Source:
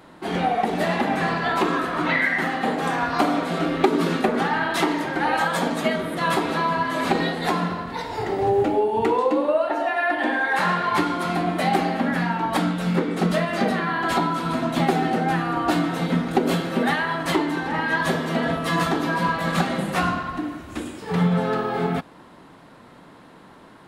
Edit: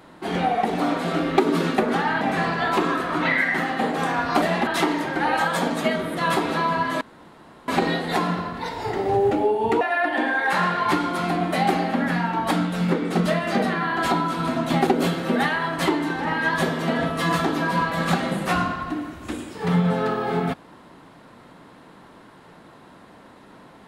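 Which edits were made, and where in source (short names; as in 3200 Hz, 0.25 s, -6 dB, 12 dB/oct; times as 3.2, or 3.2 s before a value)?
0.8–1.05 swap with 3.26–4.67
7.01 insert room tone 0.67 s
9.14–9.87 cut
14.93–16.34 cut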